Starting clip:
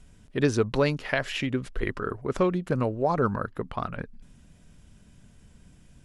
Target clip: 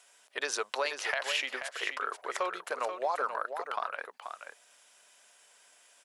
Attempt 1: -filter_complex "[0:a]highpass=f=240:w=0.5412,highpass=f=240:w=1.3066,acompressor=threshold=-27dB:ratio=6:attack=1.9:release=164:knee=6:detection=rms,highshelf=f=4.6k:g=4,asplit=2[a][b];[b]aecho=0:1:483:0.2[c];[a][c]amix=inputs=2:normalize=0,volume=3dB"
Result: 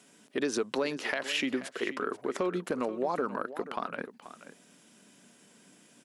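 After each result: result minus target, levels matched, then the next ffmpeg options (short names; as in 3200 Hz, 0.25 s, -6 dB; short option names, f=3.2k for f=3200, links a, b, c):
250 Hz band +18.0 dB; echo-to-direct -6 dB
-filter_complex "[0:a]highpass=f=620:w=0.5412,highpass=f=620:w=1.3066,acompressor=threshold=-27dB:ratio=6:attack=1.9:release=164:knee=6:detection=rms,highshelf=f=4.6k:g=4,asplit=2[a][b];[b]aecho=0:1:483:0.2[c];[a][c]amix=inputs=2:normalize=0,volume=3dB"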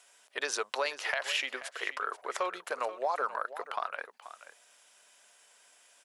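echo-to-direct -6 dB
-filter_complex "[0:a]highpass=f=620:w=0.5412,highpass=f=620:w=1.3066,acompressor=threshold=-27dB:ratio=6:attack=1.9:release=164:knee=6:detection=rms,highshelf=f=4.6k:g=4,asplit=2[a][b];[b]aecho=0:1:483:0.398[c];[a][c]amix=inputs=2:normalize=0,volume=3dB"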